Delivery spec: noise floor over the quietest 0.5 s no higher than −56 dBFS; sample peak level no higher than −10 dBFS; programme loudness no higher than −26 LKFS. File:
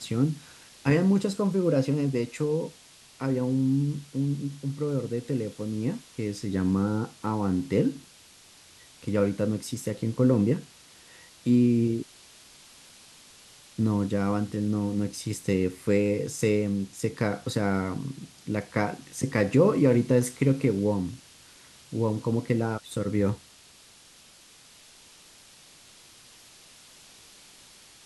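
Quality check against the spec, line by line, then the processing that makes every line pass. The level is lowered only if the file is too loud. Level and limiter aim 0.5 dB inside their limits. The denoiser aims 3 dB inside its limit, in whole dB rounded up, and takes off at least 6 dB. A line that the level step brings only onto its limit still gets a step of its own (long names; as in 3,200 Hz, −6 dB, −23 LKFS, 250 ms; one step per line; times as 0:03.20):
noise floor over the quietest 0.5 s −54 dBFS: out of spec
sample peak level −9.5 dBFS: out of spec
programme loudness −27.0 LKFS: in spec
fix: broadband denoise 6 dB, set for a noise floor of −54 dBFS
brickwall limiter −10.5 dBFS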